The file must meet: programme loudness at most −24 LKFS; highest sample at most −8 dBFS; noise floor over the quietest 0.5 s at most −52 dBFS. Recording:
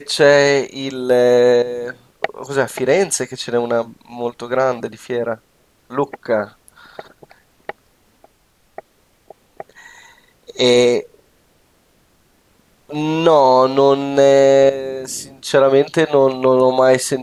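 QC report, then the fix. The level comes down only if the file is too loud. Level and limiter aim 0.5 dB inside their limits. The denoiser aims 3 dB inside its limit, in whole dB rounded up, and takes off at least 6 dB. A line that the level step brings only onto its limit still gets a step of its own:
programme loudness −15.5 LKFS: out of spec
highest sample −2.5 dBFS: out of spec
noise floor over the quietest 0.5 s −58 dBFS: in spec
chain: level −9 dB

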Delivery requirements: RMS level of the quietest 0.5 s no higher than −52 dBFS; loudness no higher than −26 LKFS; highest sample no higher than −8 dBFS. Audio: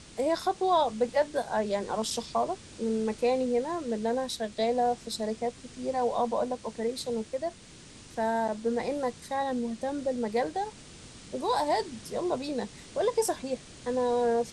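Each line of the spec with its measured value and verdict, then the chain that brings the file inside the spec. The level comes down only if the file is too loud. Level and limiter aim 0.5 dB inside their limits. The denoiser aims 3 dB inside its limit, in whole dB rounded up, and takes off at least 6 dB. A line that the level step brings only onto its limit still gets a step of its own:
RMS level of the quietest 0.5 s −50 dBFS: out of spec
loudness −30.0 LKFS: in spec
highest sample −14.0 dBFS: in spec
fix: broadband denoise 6 dB, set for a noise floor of −50 dBFS

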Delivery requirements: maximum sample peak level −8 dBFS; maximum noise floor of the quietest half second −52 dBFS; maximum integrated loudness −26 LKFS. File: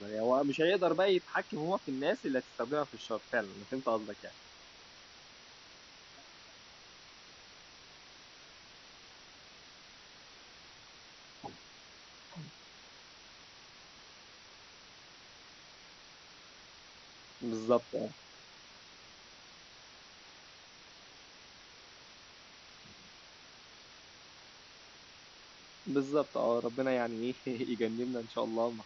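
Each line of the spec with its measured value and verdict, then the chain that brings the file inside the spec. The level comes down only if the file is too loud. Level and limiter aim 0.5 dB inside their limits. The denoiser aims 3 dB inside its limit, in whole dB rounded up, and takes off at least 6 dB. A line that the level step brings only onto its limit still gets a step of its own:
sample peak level −16.0 dBFS: in spec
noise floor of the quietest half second −56 dBFS: in spec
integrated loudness −34.0 LKFS: in spec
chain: no processing needed

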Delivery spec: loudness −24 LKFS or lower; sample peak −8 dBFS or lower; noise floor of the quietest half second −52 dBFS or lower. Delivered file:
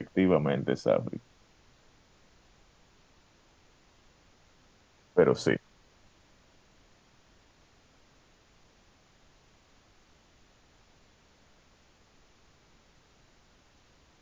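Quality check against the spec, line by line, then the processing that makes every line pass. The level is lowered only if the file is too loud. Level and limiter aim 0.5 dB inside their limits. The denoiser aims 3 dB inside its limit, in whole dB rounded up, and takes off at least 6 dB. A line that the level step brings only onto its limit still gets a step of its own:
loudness −28.0 LKFS: in spec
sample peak −9.0 dBFS: in spec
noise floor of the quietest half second −63 dBFS: in spec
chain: no processing needed

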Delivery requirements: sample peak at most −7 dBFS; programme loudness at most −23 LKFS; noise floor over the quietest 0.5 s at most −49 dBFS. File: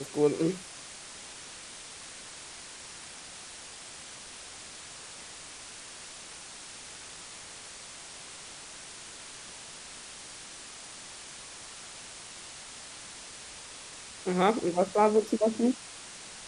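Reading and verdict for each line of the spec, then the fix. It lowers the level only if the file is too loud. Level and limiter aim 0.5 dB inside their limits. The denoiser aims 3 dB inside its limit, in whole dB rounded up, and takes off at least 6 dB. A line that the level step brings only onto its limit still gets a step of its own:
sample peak −10.5 dBFS: in spec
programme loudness −35.0 LKFS: in spec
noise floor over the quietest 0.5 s −46 dBFS: out of spec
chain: broadband denoise 6 dB, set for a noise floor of −46 dBFS

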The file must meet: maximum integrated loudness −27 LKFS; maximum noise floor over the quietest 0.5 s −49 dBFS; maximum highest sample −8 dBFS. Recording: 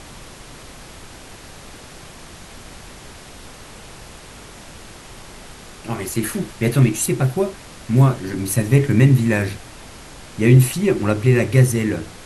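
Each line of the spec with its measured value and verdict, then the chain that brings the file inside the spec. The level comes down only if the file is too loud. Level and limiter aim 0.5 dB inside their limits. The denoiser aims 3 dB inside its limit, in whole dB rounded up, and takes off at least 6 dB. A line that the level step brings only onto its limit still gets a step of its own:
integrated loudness −18.0 LKFS: out of spec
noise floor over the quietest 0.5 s −40 dBFS: out of spec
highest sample −2.0 dBFS: out of spec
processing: level −9.5 dB

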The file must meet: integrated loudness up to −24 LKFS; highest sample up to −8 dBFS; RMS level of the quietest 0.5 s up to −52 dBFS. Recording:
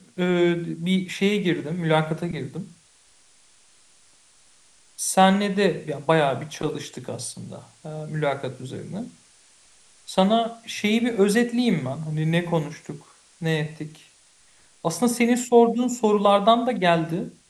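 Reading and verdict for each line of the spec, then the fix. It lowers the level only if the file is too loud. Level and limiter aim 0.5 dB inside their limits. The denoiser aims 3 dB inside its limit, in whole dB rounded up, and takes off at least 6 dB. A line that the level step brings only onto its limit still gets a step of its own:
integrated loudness −23.0 LKFS: out of spec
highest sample −3.5 dBFS: out of spec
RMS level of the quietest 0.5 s −57 dBFS: in spec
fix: level −1.5 dB
brickwall limiter −8.5 dBFS

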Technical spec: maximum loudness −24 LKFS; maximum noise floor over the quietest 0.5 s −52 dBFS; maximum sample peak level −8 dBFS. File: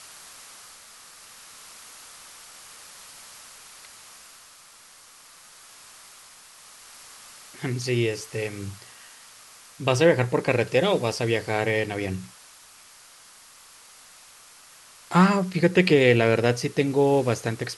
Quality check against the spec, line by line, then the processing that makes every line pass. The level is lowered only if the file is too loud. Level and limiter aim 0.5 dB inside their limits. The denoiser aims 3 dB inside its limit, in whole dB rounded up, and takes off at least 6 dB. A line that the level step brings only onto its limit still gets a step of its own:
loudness −23.0 LKFS: out of spec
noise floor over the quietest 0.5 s −51 dBFS: out of spec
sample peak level −4.5 dBFS: out of spec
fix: level −1.5 dB
brickwall limiter −8.5 dBFS

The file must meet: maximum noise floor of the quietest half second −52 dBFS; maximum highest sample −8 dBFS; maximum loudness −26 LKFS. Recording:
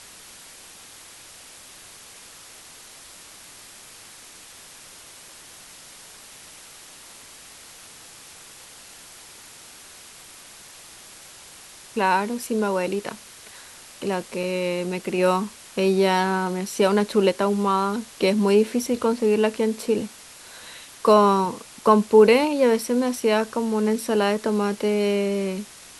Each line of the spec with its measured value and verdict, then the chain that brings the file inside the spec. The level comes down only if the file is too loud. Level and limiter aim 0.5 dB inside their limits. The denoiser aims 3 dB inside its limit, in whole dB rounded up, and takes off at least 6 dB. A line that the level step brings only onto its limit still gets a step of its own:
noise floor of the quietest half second −45 dBFS: out of spec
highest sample −3.5 dBFS: out of spec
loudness −22.0 LKFS: out of spec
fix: broadband denoise 6 dB, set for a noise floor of −45 dBFS
level −4.5 dB
brickwall limiter −8.5 dBFS

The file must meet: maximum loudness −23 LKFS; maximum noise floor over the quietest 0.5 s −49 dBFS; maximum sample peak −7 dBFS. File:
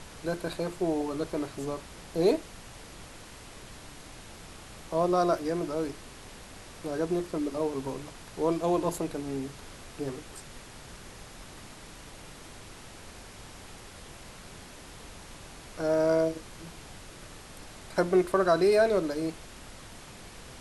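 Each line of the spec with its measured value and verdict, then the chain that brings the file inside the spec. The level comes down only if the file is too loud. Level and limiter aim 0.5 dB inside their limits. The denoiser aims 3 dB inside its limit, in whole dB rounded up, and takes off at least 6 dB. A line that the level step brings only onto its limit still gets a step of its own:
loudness −29.5 LKFS: in spec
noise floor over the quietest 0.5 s −47 dBFS: out of spec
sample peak −11.5 dBFS: in spec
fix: broadband denoise 6 dB, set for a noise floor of −47 dBFS

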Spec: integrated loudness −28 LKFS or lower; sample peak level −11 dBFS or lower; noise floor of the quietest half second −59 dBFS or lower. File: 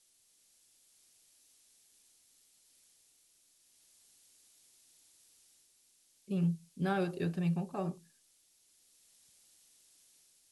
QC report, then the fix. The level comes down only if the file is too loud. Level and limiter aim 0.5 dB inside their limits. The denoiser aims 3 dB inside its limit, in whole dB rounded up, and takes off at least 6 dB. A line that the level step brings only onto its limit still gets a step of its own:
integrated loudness −35.0 LKFS: in spec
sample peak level −21.0 dBFS: in spec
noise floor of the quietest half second −70 dBFS: in spec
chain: no processing needed

